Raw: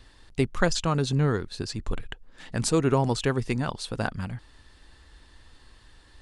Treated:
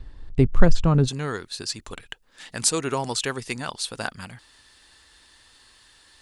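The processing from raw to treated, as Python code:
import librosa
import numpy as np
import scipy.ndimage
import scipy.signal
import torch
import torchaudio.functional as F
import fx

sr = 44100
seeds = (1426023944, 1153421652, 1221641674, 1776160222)

y = fx.tilt_eq(x, sr, slope=fx.steps((0.0, -3.0), (1.07, 3.0)))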